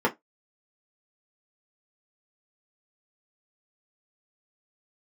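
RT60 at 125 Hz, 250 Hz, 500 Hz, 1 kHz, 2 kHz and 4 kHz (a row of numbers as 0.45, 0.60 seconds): 0.10, 0.20, 0.15, 0.15, 0.15, 0.10 seconds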